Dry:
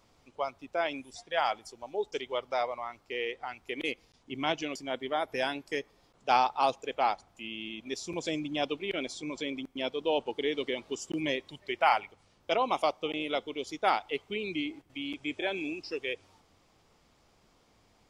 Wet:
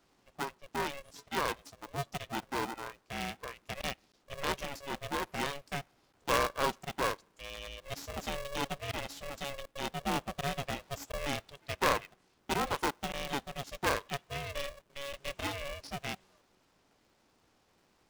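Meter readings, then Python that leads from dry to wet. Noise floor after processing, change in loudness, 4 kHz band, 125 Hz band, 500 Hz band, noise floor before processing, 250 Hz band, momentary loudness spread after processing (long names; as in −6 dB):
−71 dBFS, −4.0 dB, −3.0 dB, +7.0 dB, −5.5 dB, −66 dBFS, −5.0 dB, 11 LU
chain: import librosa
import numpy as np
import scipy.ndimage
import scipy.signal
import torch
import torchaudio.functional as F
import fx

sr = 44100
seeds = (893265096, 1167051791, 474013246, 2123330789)

y = fx.tracing_dist(x, sr, depth_ms=0.12)
y = y * np.sign(np.sin(2.0 * np.pi * 280.0 * np.arange(len(y)) / sr))
y = y * librosa.db_to_amplitude(-4.5)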